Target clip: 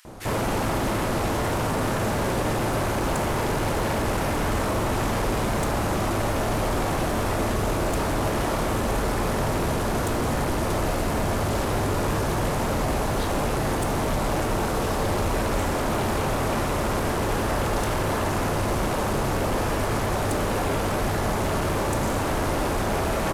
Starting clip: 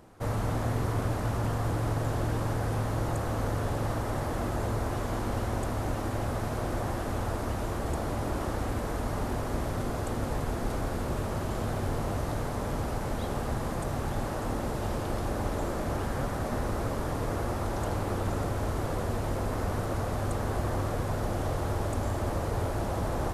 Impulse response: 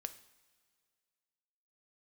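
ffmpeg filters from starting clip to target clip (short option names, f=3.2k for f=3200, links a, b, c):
-filter_complex "[0:a]aeval=exprs='0.158*sin(PI/2*5.62*val(0)/0.158)':c=same,acrossover=split=1800[a][b];[a]adelay=50[c];[c][b]amix=inputs=2:normalize=0[d];[1:a]atrim=start_sample=2205[e];[d][e]afir=irnorm=-1:irlink=0,volume=-2dB"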